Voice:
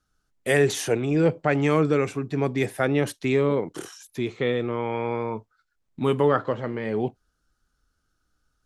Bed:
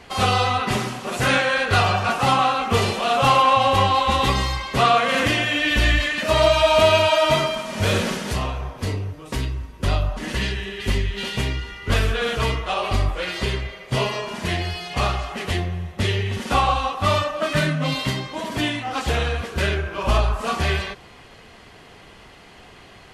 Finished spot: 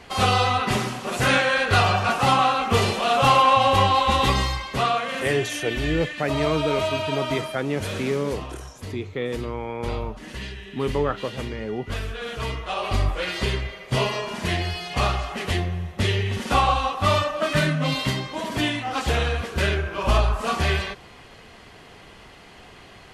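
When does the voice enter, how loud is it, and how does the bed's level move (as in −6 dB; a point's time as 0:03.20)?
4.75 s, −3.5 dB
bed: 0:04.42 −0.5 dB
0:05.26 −10 dB
0:12.13 −10 dB
0:13.09 −0.5 dB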